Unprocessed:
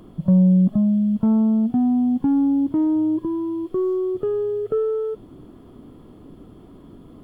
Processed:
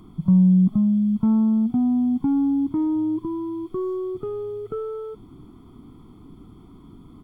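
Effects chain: comb 0.9 ms, depth 80%; trim -4.5 dB

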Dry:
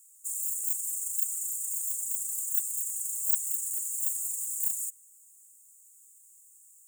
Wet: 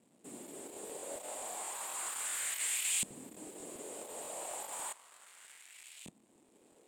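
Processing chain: in parallel at -5 dB: fuzz box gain 44 dB, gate -54 dBFS; on the sum: peak limiter -15.5 dBFS, peak gain reduction 7.5 dB; frequency weighting D; LFO band-pass saw up 0.33 Hz 200–2800 Hz; high-order bell 2.8 kHz -11 dB 2.6 oct; crackling interface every 0.13 s, samples 1024, repeat, from 0.72 s; trim +3.5 dB

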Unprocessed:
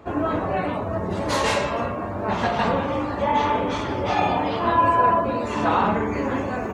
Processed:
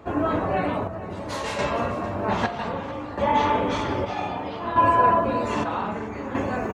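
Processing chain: square tremolo 0.63 Hz, depth 60%, duty 55%; delay 450 ms -16.5 dB

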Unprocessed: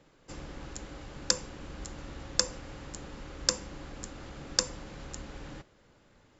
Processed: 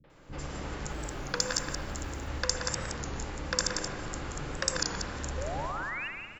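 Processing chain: chunks repeated in reverse 126 ms, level -3 dB; dynamic bell 1.6 kHz, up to +5 dB, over -49 dBFS, Q 1.1; in parallel at -2.5 dB: compressor with a negative ratio -42 dBFS; 0.80–2.19 s: on the sum: short-mantissa float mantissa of 4-bit; three bands offset in time lows, mids, highs 40/100 ms, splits 250/3800 Hz; 5.37–6.08 s: painted sound rise 490–2900 Hz -36 dBFS; on a send: delay 178 ms -6.5 dB; on the sum: spring tank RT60 1.8 s, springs 55 ms, chirp 25 ms, DRR 5.5 dB; warped record 33 1/3 rpm, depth 100 cents; trim -2 dB

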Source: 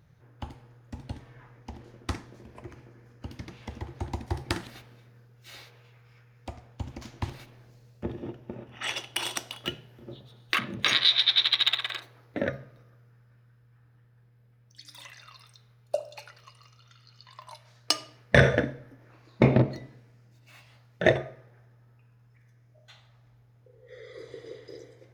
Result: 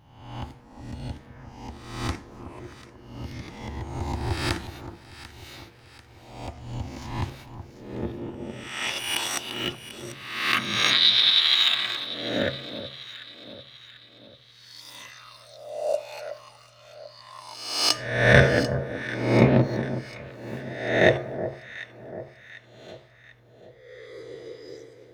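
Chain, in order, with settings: reverse spectral sustain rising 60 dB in 0.86 s; echo whose repeats swap between lows and highs 371 ms, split 1.2 kHz, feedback 67%, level -11 dB

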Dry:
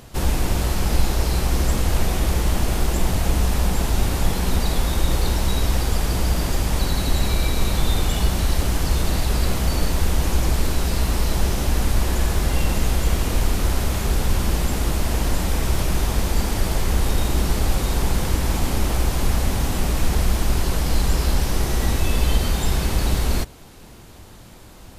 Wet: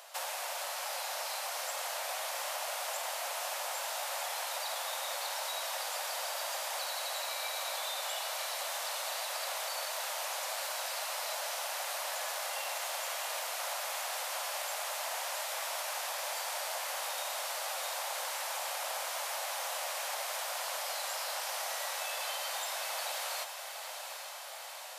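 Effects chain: steep high-pass 550 Hz 72 dB/octave; compression 6:1, threshold -32 dBFS, peak gain reduction 6.5 dB; echo that smears into a reverb 817 ms, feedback 73%, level -8.5 dB; trim -3 dB

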